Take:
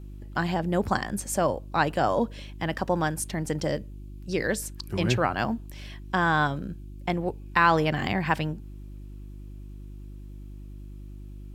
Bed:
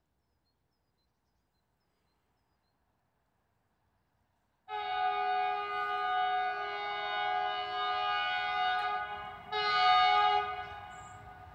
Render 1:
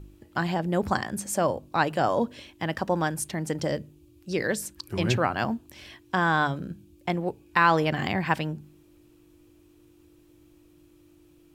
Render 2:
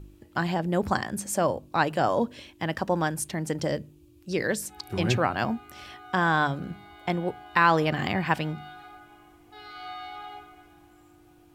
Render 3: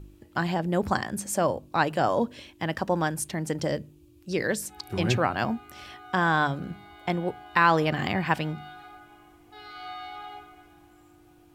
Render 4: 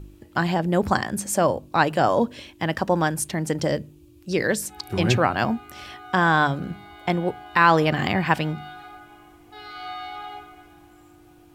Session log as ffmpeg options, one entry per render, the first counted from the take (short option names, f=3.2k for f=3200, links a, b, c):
-af "bandreject=f=50:t=h:w=4,bandreject=f=100:t=h:w=4,bandreject=f=150:t=h:w=4,bandreject=f=200:t=h:w=4,bandreject=f=250:t=h:w=4"
-filter_complex "[1:a]volume=-14dB[a];[0:a][a]amix=inputs=2:normalize=0"
-af anull
-af "volume=4.5dB,alimiter=limit=-3dB:level=0:latency=1"